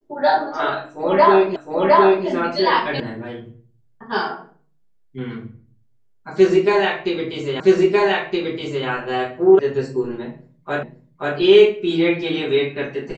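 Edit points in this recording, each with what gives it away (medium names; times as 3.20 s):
1.56 s: repeat of the last 0.71 s
3.00 s: sound stops dead
7.60 s: repeat of the last 1.27 s
9.59 s: sound stops dead
10.83 s: repeat of the last 0.53 s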